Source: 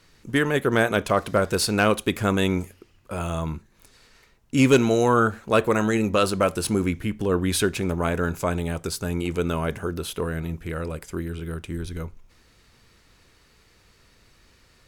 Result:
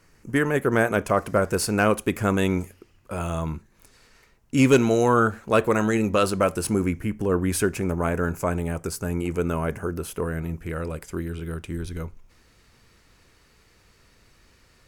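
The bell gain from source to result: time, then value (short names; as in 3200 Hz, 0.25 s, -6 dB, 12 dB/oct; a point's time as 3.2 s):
bell 3700 Hz 0.62 oct
1.92 s -13 dB
2.58 s -4.5 dB
6.26 s -4.5 dB
6.96 s -14 dB
10.24 s -14 dB
11.01 s -3 dB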